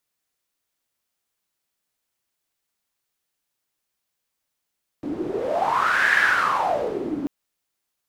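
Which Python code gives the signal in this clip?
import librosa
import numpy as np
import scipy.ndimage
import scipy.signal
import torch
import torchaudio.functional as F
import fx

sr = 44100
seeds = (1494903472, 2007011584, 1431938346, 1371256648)

y = fx.wind(sr, seeds[0], length_s=2.24, low_hz=290.0, high_hz=1700.0, q=8.0, gusts=1, swing_db=9.0)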